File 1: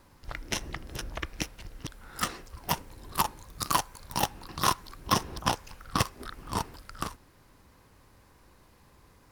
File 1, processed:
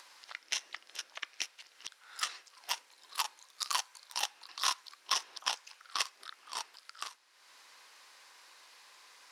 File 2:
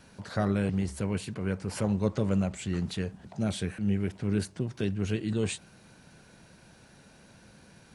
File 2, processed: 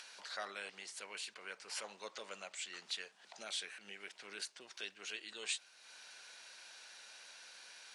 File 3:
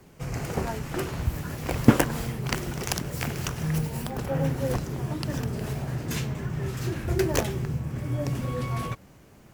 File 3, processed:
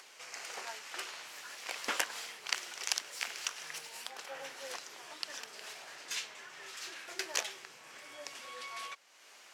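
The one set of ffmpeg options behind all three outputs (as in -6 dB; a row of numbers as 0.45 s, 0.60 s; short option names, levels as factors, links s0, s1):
-af "highpass=490,lowpass=4400,aderivative,acompressor=mode=upward:threshold=0.002:ratio=2.5,volume=2.37"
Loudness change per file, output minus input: -5.0 LU, -15.0 LU, -11.0 LU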